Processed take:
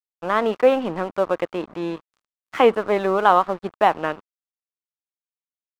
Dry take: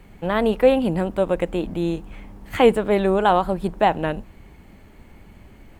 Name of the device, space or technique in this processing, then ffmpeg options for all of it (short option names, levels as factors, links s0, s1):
pocket radio on a weak battery: -af "highpass=270,lowpass=3800,aeval=exprs='sgn(val(0))*max(abs(val(0))-0.0126,0)':c=same,equalizer=f=1200:t=o:w=0.54:g=8.5"